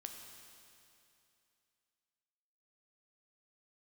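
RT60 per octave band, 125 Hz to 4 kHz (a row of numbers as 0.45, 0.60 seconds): 2.7, 2.7, 2.7, 2.7, 2.7, 2.7 seconds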